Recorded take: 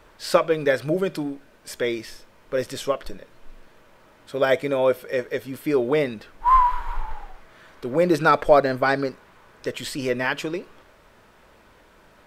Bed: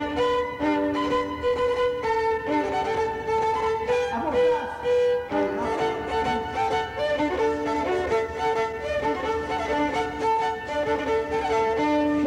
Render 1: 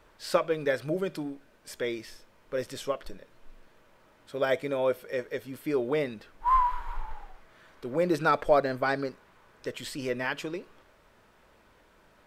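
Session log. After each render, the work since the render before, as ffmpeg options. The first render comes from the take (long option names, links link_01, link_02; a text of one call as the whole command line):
ffmpeg -i in.wav -af "volume=-7dB" out.wav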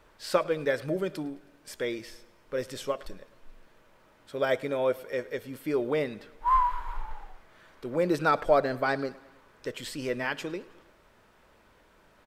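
ffmpeg -i in.wav -af "aecho=1:1:106|212|318|424:0.0794|0.0461|0.0267|0.0155" out.wav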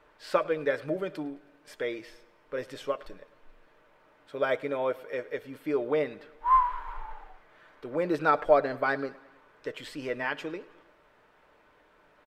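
ffmpeg -i in.wav -af "bass=frequency=250:gain=-8,treble=frequency=4000:gain=-11,aecho=1:1:6.7:0.32" out.wav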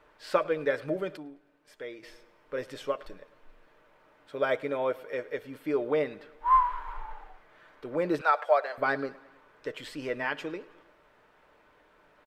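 ffmpeg -i in.wav -filter_complex "[0:a]asettb=1/sr,asplit=3[link_01][link_02][link_03];[link_01]atrim=end=8.214[link_04];[link_02]atrim=start=8.21:end=8.78,asetpts=PTS-STARTPTS,afade=type=in:duration=0.004:curve=qsin,afade=type=out:start_time=0.566:duration=0.004:curve=qsin,highpass=frequency=590:width=0.5412,highpass=frequency=590:width=1.3066[link_05];[link_03]atrim=start=8.776[link_06];[link_04][link_05]acrossfade=duration=0.004:curve1=hsin:curve2=qsin[link_07];[link_07][link_06]acrossfade=duration=0.004:curve1=qsin:curve2=hsin,asplit=3[link_08][link_09][link_10];[link_08]atrim=end=1.172[link_11];[link_09]atrim=start=1.168:end=2.032,asetpts=PTS-STARTPTS,volume=-8dB[link_12];[link_10]atrim=start=2.028[link_13];[link_11][link_12]acrossfade=duration=0.004:curve1=hsin:curve2=hsin[link_14];[link_14][link_13]acrossfade=duration=0.004:curve1=hsin:curve2=hsin" out.wav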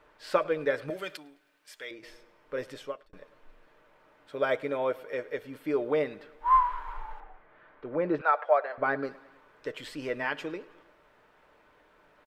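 ffmpeg -i in.wav -filter_complex "[0:a]asettb=1/sr,asplit=3[link_01][link_02][link_03];[link_01]atrim=end=0.904[link_04];[link_02]atrim=start=0.9:end=1.91,asetpts=PTS-STARTPTS,afade=type=in:duration=0.004:curve=qsin,afade=type=out:start_time=1.006:duration=0.004:curve=qsin,tiltshelf=frequency=1100:gain=-10[link_05];[link_03]atrim=start=1.906[link_06];[link_04][link_05]acrossfade=duration=0.004:curve1=hsin:curve2=qsin[link_07];[link_07][link_06]acrossfade=duration=0.004:curve1=qsin:curve2=hsin,asettb=1/sr,asplit=3[link_08][link_09][link_10];[link_08]atrim=end=7.204[link_11];[link_09]atrim=start=7.2:end=9.03,asetpts=PTS-STARTPTS,afade=type=in:duration=0.004:curve=qsin,afade=type=out:start_time=1.826:duration=0.004:curve=qsin,lowpass=2200[link_12];[link_10]atrim=start=9.026[link_13];[link_11][link_12]acrossfade=duration=0.004:curve1=hsin:curve2=qsin[link_14];[link_14][link_13]acrossfade=duration=0.004:curve1=qsin:curve2=hsin,asplit=2[link_15][link_16];[link_15]atrim=end=3.13,asetpts=PTS-STARTPTS,afade=type=out:start_time=2.67:duration=0.46[link_17];[link_16]atrim=start=3.13,asetpts=PTS-STARTPTS,afade=type=in:duration=0.004:curve=hsin[link_18];[link_17][link_18]concat=n=2:v=0:a=1" out.wav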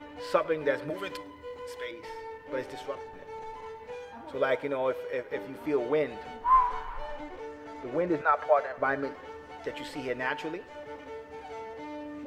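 ffmpeg -i in.wav -i bed.wav -filter_complex "[1:a]volume=-18dB[link_01];[0:a][link_01]amix=inputs=2:normalize=0" out.wav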